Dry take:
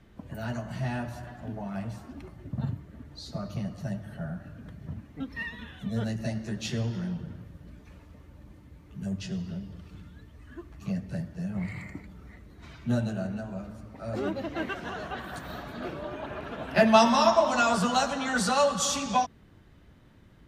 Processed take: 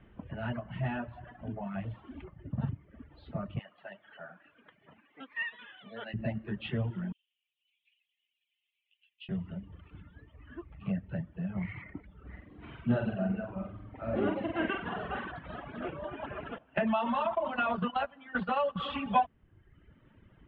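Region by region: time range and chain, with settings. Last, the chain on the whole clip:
1.78–2.24 s: one-bit delta coder 64 kbps, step -48 dBFS + doubling 37 ms -12 dB
3.59–6.14 s: band-pass 450–5500 Hz + tilt shelf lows -4.5 dB, about 1.2 kHz
7.12–9.29 s: steep high-pass 2.6 kHz 48 dB/octave + distance through air 59 m
12.20–15.32 s: peaking EQ 260 Hz +2 dB 1.4 oct + flutter echo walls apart 8.1 m, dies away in 0.84 s
16.58–18.76 s: gate -27 dBFS, range -14 dB + compression 10:1, threshold -23 dBFS + distance through air 55 m
whole clip: elliptic low-pass 3.1 kHz, stop band 50 dB; reverb removal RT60 1.1 s

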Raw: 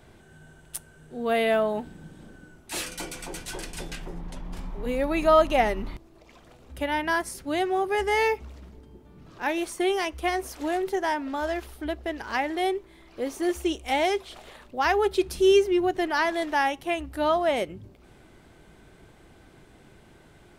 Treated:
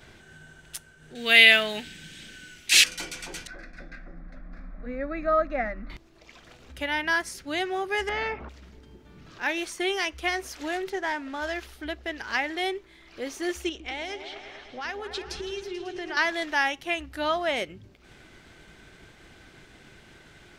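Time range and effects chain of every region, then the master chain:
1.15–2.84 s: resonant high shelf 1.6 kHz +13 dB, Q 1.5 + short-mantissa float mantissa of 6-bit
3.47–5.90 s: distance through air 350 m + static phaser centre 610 Hz, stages 8
8.09–8.49 s: Chebyshev low-pass 870 Hz + careless resampling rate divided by 2×, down none, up filtered + spectrum-flattening compressor 2:1
10.90–11.42 s: CVSD coder 64 kbps + low-pass 3.1 kHz 6 dB/octave
13.69–16.17 s: level-controlled noise filter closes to 2.6 kHz, open at -17 dBFS + compression 10:1, threshold -29 dBFS + delay with an opening low-pass 109 ms, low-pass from 400 Hz, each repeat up 2 oct, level -6 dB
whole clip: expander -49 dBFS; high-order bell 3.1 kHz +8 dB 2.6 oct; upward compressor, threshold -38 dBFS; trim -4.5 dB

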